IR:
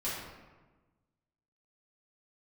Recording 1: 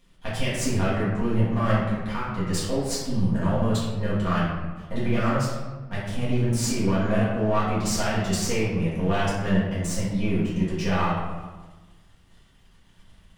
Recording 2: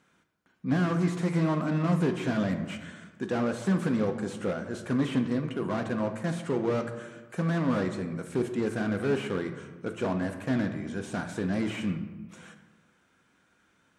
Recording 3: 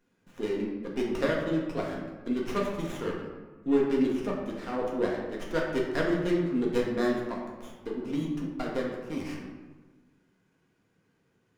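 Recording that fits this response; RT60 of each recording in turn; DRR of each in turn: 1; 1.3, 1.3, 1.3 s; -10.5, 6.0, -2.5 dB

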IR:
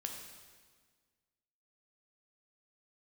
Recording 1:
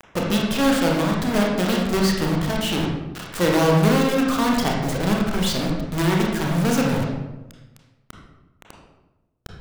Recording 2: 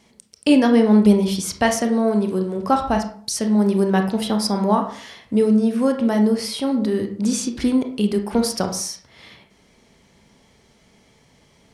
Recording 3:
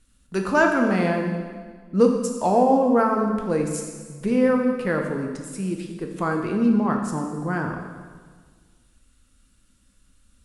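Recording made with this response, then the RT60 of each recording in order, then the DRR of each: 3; 1.1, 0.50, 1.6 s; -1.5, 5.0, 2.0 dB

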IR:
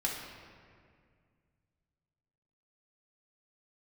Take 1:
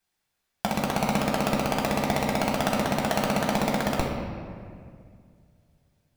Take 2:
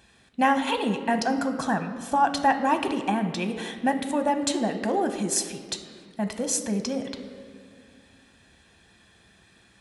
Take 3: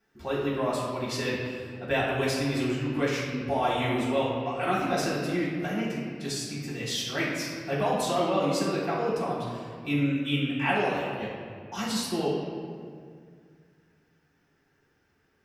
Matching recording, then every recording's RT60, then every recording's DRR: 1; 2.1, 2.1, 2.1 s; -3.0, 6.5, -9.5 dB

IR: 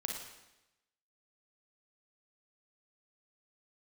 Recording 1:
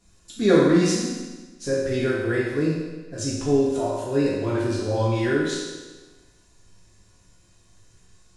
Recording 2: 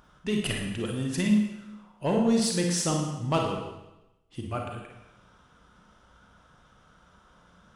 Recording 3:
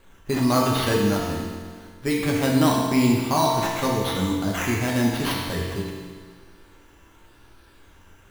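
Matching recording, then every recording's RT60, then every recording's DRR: 2; 1.3, 0.95, 1.7 s; -8.5, 0.5, -3.5 dB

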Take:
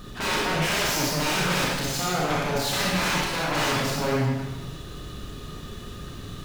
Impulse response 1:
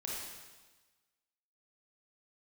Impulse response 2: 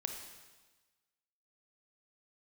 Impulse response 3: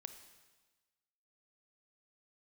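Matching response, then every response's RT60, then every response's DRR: 1; 1.3, 1.3, 1.3 s; -5.0, 3.5, 8.5 dB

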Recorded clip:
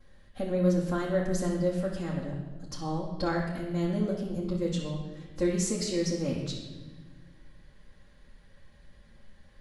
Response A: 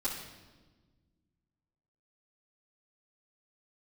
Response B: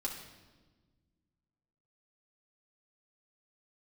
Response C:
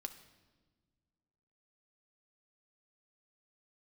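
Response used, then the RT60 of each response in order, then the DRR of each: A; 1.3, 1.3, 1.4 s; -12.5, -3.5, 6.5 dB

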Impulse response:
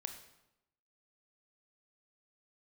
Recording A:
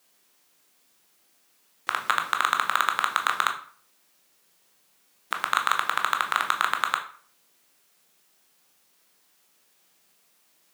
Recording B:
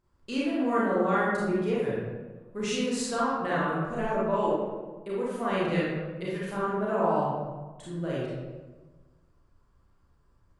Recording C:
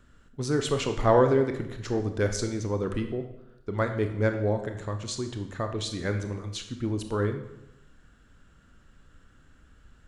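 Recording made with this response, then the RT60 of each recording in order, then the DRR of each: C; 0.45, 1.3, 0.90 s; 3.5, -7.5, 6.0 dB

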